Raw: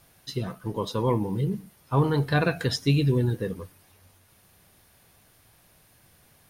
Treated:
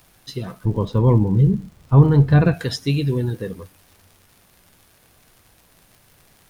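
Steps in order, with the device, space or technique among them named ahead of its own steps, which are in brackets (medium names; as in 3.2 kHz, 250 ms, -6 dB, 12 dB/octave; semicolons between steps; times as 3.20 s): 0.65–2.54 s: RIAA curve playback; vinyl LP (crackle 120 per s -41 dBFS; pink noise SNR 40 dB); trim +1.5 dB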